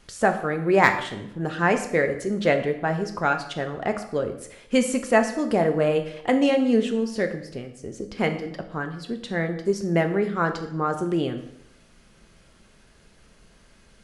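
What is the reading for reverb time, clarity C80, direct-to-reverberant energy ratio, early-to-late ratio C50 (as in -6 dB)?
0.80 s, 13.0 dB, 5.5 dB, 10.5 dB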